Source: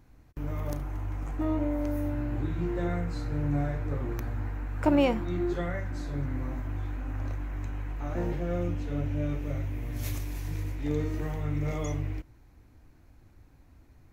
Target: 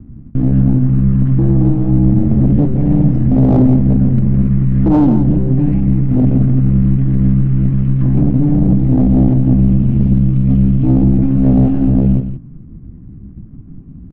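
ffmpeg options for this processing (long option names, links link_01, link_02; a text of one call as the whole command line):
ffmpeg -i in.wav -filter_complex "[0:a]acrossover=split=340[link_01][link_02];[link_02]acompressor=threshold=-46dB:ratio=5[link_03];[link_01][link_03]amix=inputs=2:normalize=0,aeval=exprs='val(0)*sin(2*PI*53*n/s)':channel_layout=same,lowshelf=frequency=280:width_type=q:width=3:gain=9.5,asetrate=57191,aresample=44100,atempo=0.771105,asuperstop=centerf=910:order=20:qfactor=7.4,aeval=exprs='0.398*sin(PI/2*2.24*val(0)/0.398)':channel_layout=same,bass=frequency=250:gain=4,treble=frequency=4000:gain=-14,adynamicsmooth=sensitivity=2.5:basefreq=1000,aecho=1:1:168:0.355" out.wav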